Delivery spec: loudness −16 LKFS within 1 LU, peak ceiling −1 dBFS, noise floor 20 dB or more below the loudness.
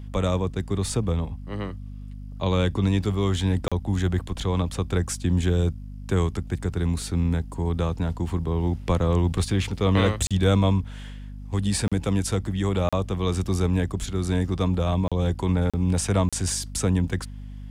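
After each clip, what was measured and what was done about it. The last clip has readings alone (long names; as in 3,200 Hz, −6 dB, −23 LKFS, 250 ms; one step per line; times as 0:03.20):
number of dropouts 7; longest dropout 36 ms; mains hum 50 Hz; hum harmonics up to 250 Hz; level of the hum −36 dBFS; integrated loudness −25.0 LKFS; sample peak −8.5 dBFS; target loudness −16.0 LKFS
→ repair the gap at 0:03.68/0:10.27/0:11.88/0:12.89/0:15.08/0:15.70/0:16.29, 36 ms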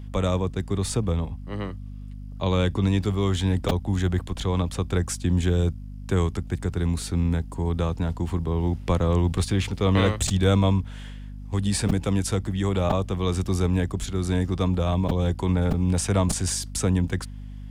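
number of dropouts 0; mains hum 50 Hz; hum harmonics up to 250 Hz; level of the hum −36 dBFS
→ mains-hum notches 50/100/150/200/250 Hz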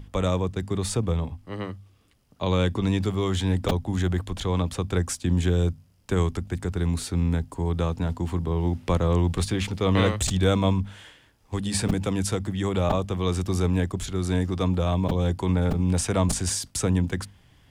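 mains hum none found; integrated loudness −25.5 LKFS; sample peak −9.0 dBFS; target loudness −16.0 LKFS
→ level +9.5 dB
brickwall limiter −1 dBFS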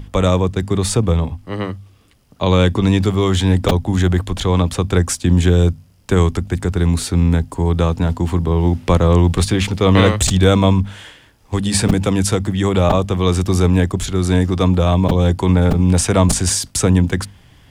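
integrated loudness −16.0 LKFS; sample peak −1.0 dBFS; background noise floor −49 dBFS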